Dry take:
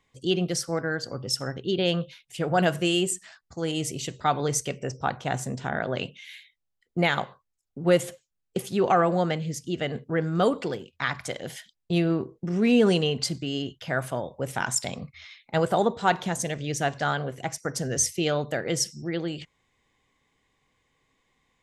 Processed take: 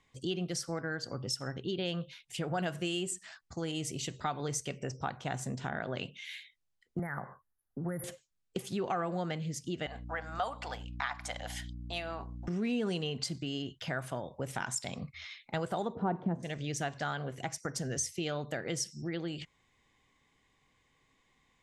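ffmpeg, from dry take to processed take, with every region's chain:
-filter_complex "[0:a]asettb=1/sr,asplit=3[a][b][c];[a]atrim=end=6.994[d];[b]atrim=start=6.99:end=8.04,asetpts=PTS-STARTPTS,afade=t=in:d=0.004:c=qsin,afade=t=out:st=1.046:d=0.004:c=qsin,highshelf=f=2.5k:g=8.5,acrossover=split=170|3000[e][f][g];[f]acompressor=threshold=-28dB:ratio=6:attack=3.2:release=140:knee=2.83:detection=peak[h];[e][h][g]amix=inputs=3:normalize=0,asuperstop=centerf=4700:order=20:qfactor=0.57[i];[c]atrim=start=8.036[j];[d][i]acrossfade=d=0.004:c1=hsin:c2=qsin[k];[k][j]acrossfade=d=0.004:c1=qsin:c2=hsin,asettb=1/sr,asplit=3[l][m][n];[l]atrim=end=9.864[o];[m]atrim=start=9.86:end=12.48,asetpts=PTS-STARTPTS,afade=t=in:d=0.004:c=qsin,afade=t=out:st=2.616:d=0.004:c=qsin,highpass=f=220:w=0.5412,highpass=f=220:w=1.3066,lowshelf=f=530:t=q:w=3:g=-12,aeval=exprs='val(0)+0.00891*(sin(2*PI*60*n/s)+sin(2*PI*2*60*n/s)/2+sin(2*PI*3*60*n/s)/3+sin(2*PI*4*60*n/s)/4+sin(2*PI*5*60*n/s)/5)':c=same[p];[n]atrim=start=12.476[q];[o][p]acrossfade=d=0.004:c1=hsin:c2=qsin[r];[r][q]acrossfade=d=0.004:c1=qsin:c2=hsin,asettb=1/sr,asplit=3[s][t][u];[s]atrim=end=15.954[v];[t]atrim=start=15.95:end=16.43,asetpts=PTS-STARTPTS,afade=t=in:d=0.004:c=qsin,afade=t=out:st=0.476:d=0.004:c=qsin,lowpass=1.1k,equalizer=f=250:t=o:w=2.6:g=13[w];[u]atrim=start=16.426[x];[v][w]acrossfade=d=0.004:c1=hsin:c2=qsin[y];[y][x]acrossfade=d=0.004:c1=qsin:c2=hsin,lowpass=11k,equalizer=f=500:t=o:w=0.77:g=-3,acompressor=threshold=-36dB:ratio=2.5"

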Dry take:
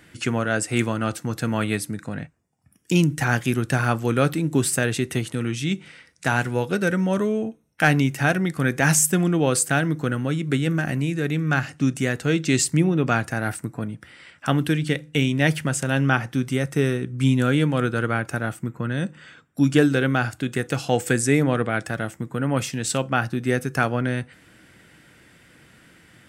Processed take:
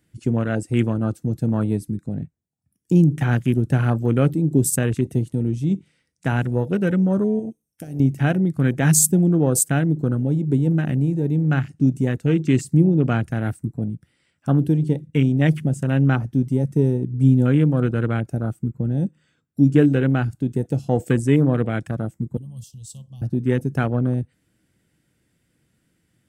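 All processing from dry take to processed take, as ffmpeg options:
-filter_complex "[0:a]asettb=1/sr,asplit=3[a][b][c];[a]atrim=end=7.394[d];[b]atrim=start=7.39:end=8,asetpts=PTS-STARTPTS,afade=t=in:d=0.004:c=qsin,afade=t=out:st=0.606:d=0.004:c=qsin,bass=f=250:g=-3,treble=f=4k:g=12,bandreject=f=4.1k:w=7.3,acompressor=threshold=-26dB:ratio=12:attack=3.2:release=140:knee=1:detection=peak[e];[c]atrim=start=7.996[f];[d][e]acrossfade=d=0.004:c1=hsin:c2=qsin[g];[g][f]acrossfade=d=0.004:c1=qsin:c2=hsin,asettb=1/sr,asplit=3[h][i][j];[h]atrim=end=22.374[k];[i]atrim=start=22.37:end=23.22,asetpts=PTS-STARTPTS,afade=t=in:d=0.004:c=qsin,afade=t=out:st=0.846:d=0.004:c=qsin,acrossover=split=160|3000[l][m][n];[m]acompressor=threshold=-43dB:ratio=2:attack=3.2:release=140:knee=2.83:detection=peak[o];[l][o][n]amix=inputs=3:normalize=0,asuperstop=centerf=1800:order=20:qfactor=1.1,equalizer=f=180:t=o:w=2.2:g=-13[p];[j]atrim=start=23.216[q];[k][p]acrossfade=d=0.004:c1=hsin:c2=qsin[r];[r][q]acrossfade=d=0.004:c1=qsin:c2=hsin,afwtdn=0.0447,equalizer=f=1.5k:w=0.35:g=-12,volume=6dB"

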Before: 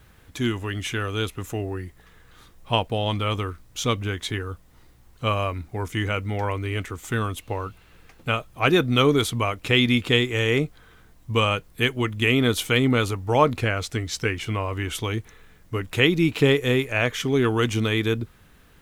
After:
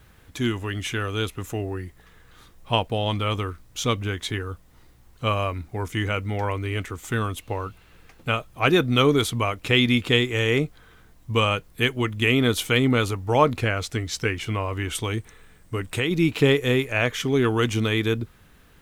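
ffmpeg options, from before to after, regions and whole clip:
-filter_complex "[0:a]asettb=1/sr,asplit=3[a][b][c];[a]atrim=end=14.954[d];[b]atrim=start=14.95:end=16.11,asetpts=PTS-STARTPTS,afade=t=in:d=0.004:c=qsin,afade=t=out:st=1.156:d=0.004:c=qsin,equalizer=f=8.4k:w=7.9:g=12,acompressor=threshold=-21dB:ratio=3:attack=3.2:release=140:knee=1:detection=peak[e];[c]atrim=start=16.106[f];[d][e]acrossfade=d=0.004:c1=hsin:c2=qsin[g];[g][f]acrossfade=d=0.004:c1=qsin:c2=hsin"

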